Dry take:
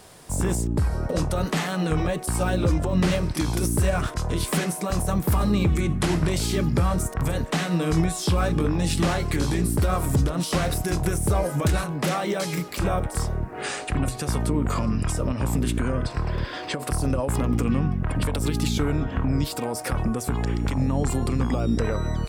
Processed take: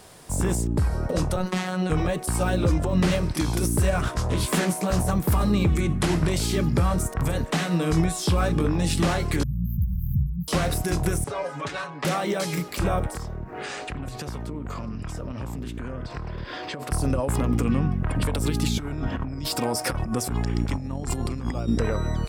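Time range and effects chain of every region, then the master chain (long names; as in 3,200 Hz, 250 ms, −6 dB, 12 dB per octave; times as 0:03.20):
0:01.36–0:01.90: high-shelf EQ 11,000 Hz −9.5 dB + phases set to zero 184 Hz
0:04.05–0:05.11: double-tracking delay 16 ms −3.5 dB + highs frequency-modulated by the lows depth 0.28 ms
0:09.43–0:10.48: linear-phase brick-wall band-stop 240–13,000 Hz + parametric band 300 Hz −11 dB 1 octave + hum removal 63.34 Hz, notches 2
0:11.24–0:12.05: high-pass filter 1,000 Hz 6 dB per octave + high-frequency loss of the air 130 metres + comb filter 7.2 ms, depth 75%
0:13.14–0:16.92: parametric band 9,300 Hz −9 dB 0.5 octaves + downward compressor 5 to 1, threshold −29 dBFS + highs frequency-modulated by the lows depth 0.14 ms
0:18.79–0:21.68: parametric band 5,200 Hz +6.5 dB 0.23 octaves + compressor whose output falls as the input rises −26 dBFS, ratio −0.5 + notch filter 450 Hz, Q 14
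whole clip: no processing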